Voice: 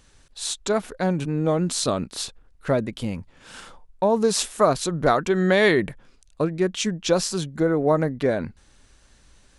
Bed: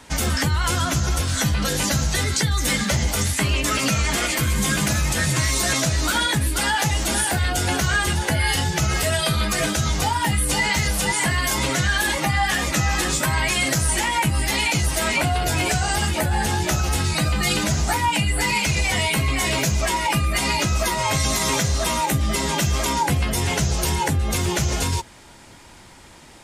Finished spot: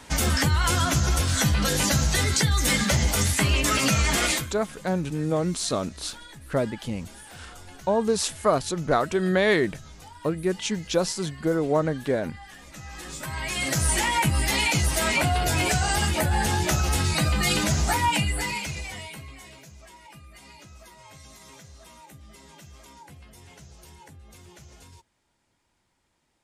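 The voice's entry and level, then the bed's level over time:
3.85 s, -3.0 dB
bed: 4.33 s -1 dB
4.56 s -24.5 dB
12.62 s -24.5 dB
13.86 s -2 dB
18.14 s -2 dB
19.62 s -27 dB

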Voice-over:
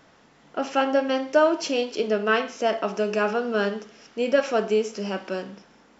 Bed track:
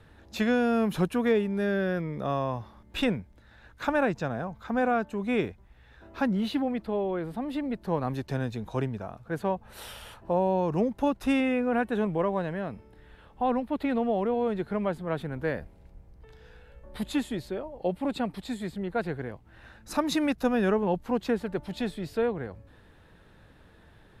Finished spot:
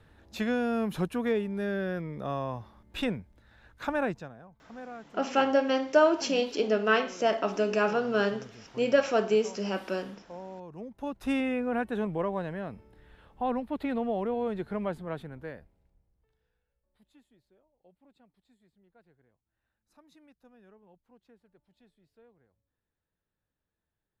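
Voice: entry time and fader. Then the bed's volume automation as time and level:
4.60 s, -2.5 dB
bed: 4.11 s -4 dB
4.35 s -17.5 dB
10.75 s -17.5 dB
11.32 s -3.5 dB
14.99 s -3.5 dB
16.85 s -33 dB

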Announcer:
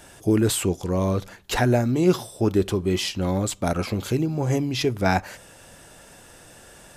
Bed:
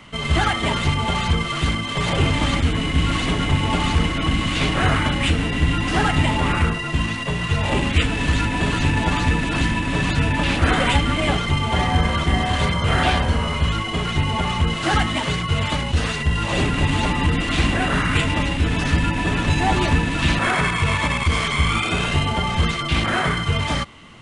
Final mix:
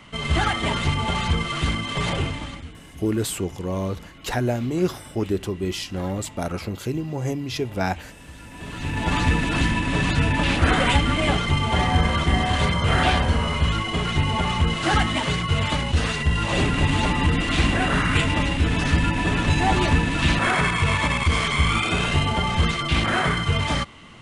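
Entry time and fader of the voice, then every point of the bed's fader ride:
2.75 s, -3.5 dB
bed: 2.08 s -2.5 dB
2.81 s -23.5 dB
8.37 s -23.5 dB
9.15 s -1 dB

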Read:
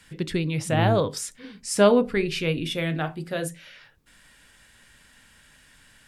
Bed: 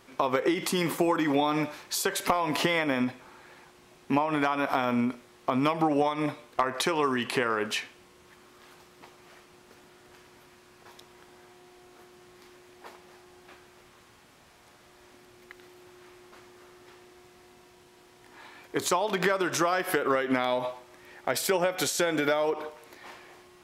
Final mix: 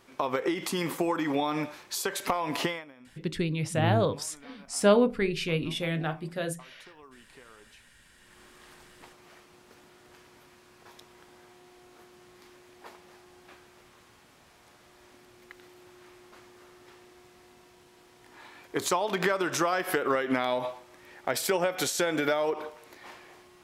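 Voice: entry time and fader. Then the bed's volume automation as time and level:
3.05 s, -3.5 dB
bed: 2.67 s -3 dB
2.93 s -26.5 dB
7.92 s -26.5 dB
8.40 s -1 dB

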